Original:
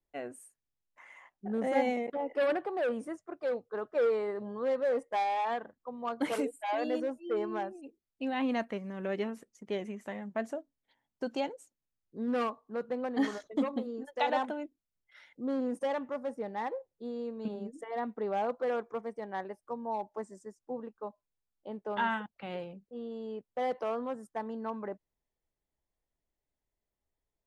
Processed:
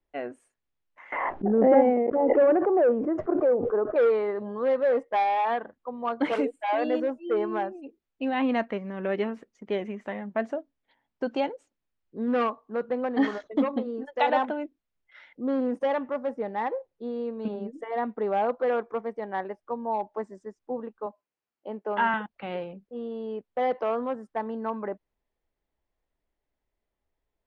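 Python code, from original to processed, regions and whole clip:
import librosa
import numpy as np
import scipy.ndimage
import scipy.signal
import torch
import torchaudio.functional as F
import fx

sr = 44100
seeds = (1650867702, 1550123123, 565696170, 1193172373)

y = fx.chain(x, sr, fx.lowpass(hz=1200.0, slope=12),
    fx.peak_eq(hz=370.0, db=6.5, octaves=1.1),
    fx.pre_swell(db_per_s=24.0), at=(1.12, 3.96))
y = fx.chain(y, sr, fx.highpass(hz=180.0, slope=12),
    fx.notch(hz=3600.0, q=6.3), at=(21.06, 22.14))
y = scipy.signal.sosfilt(scipy.signal.butter(2, 3100.0, 'lowpass', fs=sr, output='sos'), y)
y = fx.peak_eq(y, sr, hz=130.0, db=-4.5, octaves=1.1)
y = F.gain(torch.from_numpy(y), 6.5).numpy()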